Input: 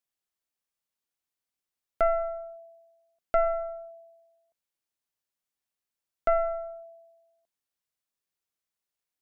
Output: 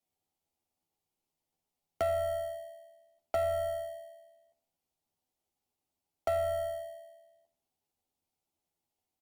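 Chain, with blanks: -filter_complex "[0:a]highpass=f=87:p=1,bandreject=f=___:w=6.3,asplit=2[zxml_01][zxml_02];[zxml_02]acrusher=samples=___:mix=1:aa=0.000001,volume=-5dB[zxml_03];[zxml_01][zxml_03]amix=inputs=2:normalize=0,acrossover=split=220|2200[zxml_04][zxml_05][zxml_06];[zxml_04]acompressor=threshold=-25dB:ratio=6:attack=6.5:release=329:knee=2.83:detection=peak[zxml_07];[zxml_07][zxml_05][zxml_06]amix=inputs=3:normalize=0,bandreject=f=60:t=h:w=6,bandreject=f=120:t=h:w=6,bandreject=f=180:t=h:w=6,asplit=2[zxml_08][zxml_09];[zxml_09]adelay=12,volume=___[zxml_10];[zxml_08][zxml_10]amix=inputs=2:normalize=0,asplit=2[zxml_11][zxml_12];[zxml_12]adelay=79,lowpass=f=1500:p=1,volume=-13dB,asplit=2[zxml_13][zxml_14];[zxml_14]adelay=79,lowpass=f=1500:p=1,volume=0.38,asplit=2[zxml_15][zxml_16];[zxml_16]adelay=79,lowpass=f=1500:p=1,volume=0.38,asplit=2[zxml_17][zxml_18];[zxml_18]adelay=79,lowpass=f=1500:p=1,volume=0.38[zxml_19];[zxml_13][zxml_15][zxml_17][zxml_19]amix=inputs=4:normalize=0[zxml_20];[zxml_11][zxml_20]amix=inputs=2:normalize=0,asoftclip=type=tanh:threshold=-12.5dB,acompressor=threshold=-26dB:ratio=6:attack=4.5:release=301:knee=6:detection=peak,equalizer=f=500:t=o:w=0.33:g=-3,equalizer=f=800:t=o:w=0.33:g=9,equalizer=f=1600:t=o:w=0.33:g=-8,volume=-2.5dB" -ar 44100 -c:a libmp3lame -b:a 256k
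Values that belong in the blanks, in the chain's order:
1800, 35, -2.5dB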